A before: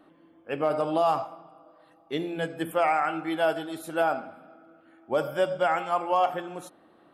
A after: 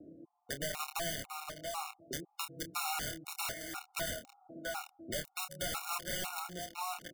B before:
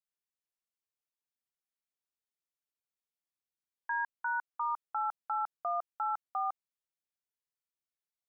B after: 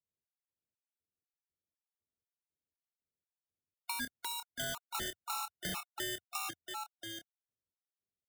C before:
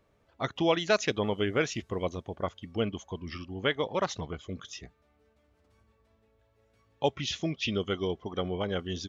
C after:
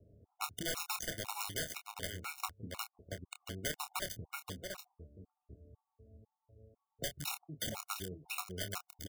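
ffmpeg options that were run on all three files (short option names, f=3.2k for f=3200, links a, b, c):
-filter_complex "[0:a]highpass=f=64:p=1,equalizer=f=88:w=1.7:g=11,acrossover=split=610[a][b];[a]acompressor=threshold=-46dB:ratio=5[c];[b]acrusher=bits=4:mix=0:aa=0.000001[d];[c][d]amix=inputs=2:normalize=0,aecho=1:1:681:0.251,aeval=exprs='(mod(15.8*val(0)+1,2)-1)/15.8':c=same,asplit=2[e][f];[f]adelay=27,volume=-9dB[g];[e][g]amix=inputs=2:normalize=0,acrossover=split=190|990|2000|6500[h][i][j][k][l];[h]acompressor=threshold=-50dB:ratio=4[m];[i]acompressor=threshold=-49dB:ratio=4[n];[j]acompressor=threshold=-48dB:ratio=4[o];[k]acompressor=threshold=-48dB:ratio=4[p];[l]acompressor=threshold=-42dB:ratio=4[q];[m][n][o][p][q]amix=inputs=5:normalize=0,afftfilt=real='re*gt(sin(2*PI*2*pts/sr)*(1-2*mod(floor(b*sr/1024/730),2)),0)':imag='im*gt(sin(2*PI*2*pts/sr)*(1-2*mod(floor(b*sr/1024/730),2)),0)':win_size=1024:overlap=0.75,volume=5.5dB"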